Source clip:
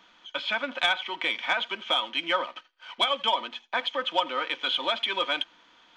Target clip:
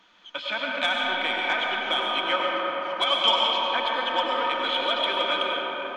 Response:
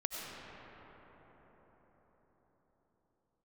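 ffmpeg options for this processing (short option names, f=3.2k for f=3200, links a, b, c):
-filter_complex "[0:a]asettb=1/sr,asplit=3[a][b][c];[a]atrim=end=3.064[d];[b]atrim=start=3.06:end=3.68,asetpts=PTS-STARTPTS,afade=t=in:d=0.004:c=qsin,afade=t=out:st=0.616:d=0.004:c=qsin,equalizer=f=5.4k:t=o:w=2.1:g=9.5[e];[c]atrim=start=3.676[f];[d][e]acrossfade=d=0.004:c1=hsin:c2=qsin[g];[g][f]acrossfade=d=0.004:c1=qsin:c2=hsin[h];[1:a]atrim=start_sample=2205,asetrate=41454,aresample=44100[i];[h][i]afir=irnorm=-1:irlink=0"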